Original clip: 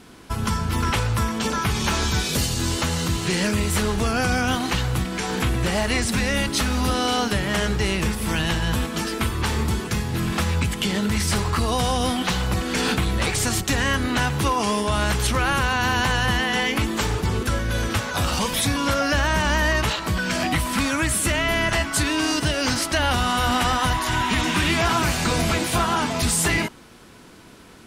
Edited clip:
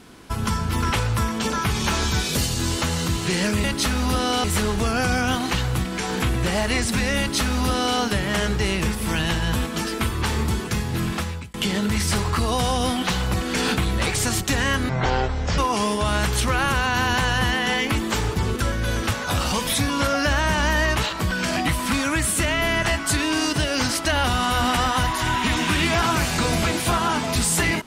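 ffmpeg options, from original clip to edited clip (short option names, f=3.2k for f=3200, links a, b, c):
-filter_complex "[0:a]asplit=6[a][b][c][d][e][f];[a]atrim=end=3.642[g];[b]atrim=start=6.388:end=7.192[h];[c]atrim=start=3.638:end=10.74,asetpts=PTS-STARTPTS,afade=t=out:st=6.602:d=0.5[i];[d]atrim=start=10.74:end=14.094,asetpts=PTS-STARTPTS,afade=t=in:d=0.004:c=hsin[j];[e]atrim=start=14.09:end=14.45,asetpts=PTS-STARTPTS,asetrate=22932,aresample=44100[k];[f]atrim=start=14.446[l];[g][h]acrossfade=d=0.004:c1=hsin:c2=hsin[m];[i][j]concat=n=2:v=0:a=1[n];[m][n]acrossfade=d=0.004:c1=hsin:c2=hsin[o];[o][k]acrossfade=d=0.004:c1=hsin:c2=hsin[p];[p][l]acrossfade=d=0.004:c1=hsin:c2=hsin"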